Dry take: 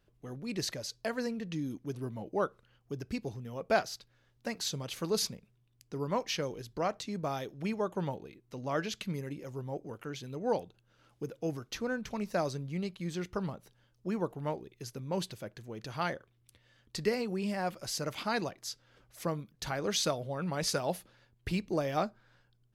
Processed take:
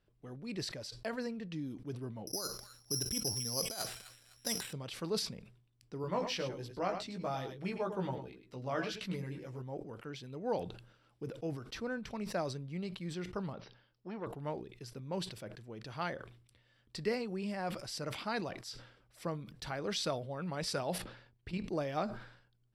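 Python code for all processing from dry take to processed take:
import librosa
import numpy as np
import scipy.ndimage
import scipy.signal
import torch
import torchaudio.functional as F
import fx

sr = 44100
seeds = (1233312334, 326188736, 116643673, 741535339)

y = fx.chain(x, sr, fx.over_compress(threshold_db=-36.0, ratio=-1.0),
    fx.echo_wet_highpass(ms=254, feedback_pct=36, hz=2400.0, wet_db=-3.0),
    fx.resample_bad(factor=8, down='filtered', up='zero_stuff'), at=(2.27, 4.73))
y = fx.chain(y, sr, fx.hum_notches(base_hz=50, count=8),
    fx.doubler(ms=16.0, db=-4),
    fx.echo_single(ms=104, db=-11.0), at=(6.02, 9.62))
y = fx.chain(y, sr, fx.ellip_lowpass(hz=5300.0, order=4, stop_db=40),
    fx.low_shelf(hz=170.0, db=-8.5),
    fx.transformer_sat(knee_hz=780.0), at=(13.53, 14.27))
y = fx.chain(y, sr, fx.high_shelf(hz=7200.0, db=-9.5),
    fx.level_steps(step_db=10), at=(20.98, 21.64))
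y = scipy.signal.sosfilt(scipy.signal.butter(2, 9200.0, 'lowpass', fs=sr, output='sos'), y)
y = fx.notch(y, sr, hz=6500.0, q=5.6)
y = fx.sustainer(y, sr, db_per_s=84.0)
y = F.gain(torch.from_numpy(y), -4.5).numpy()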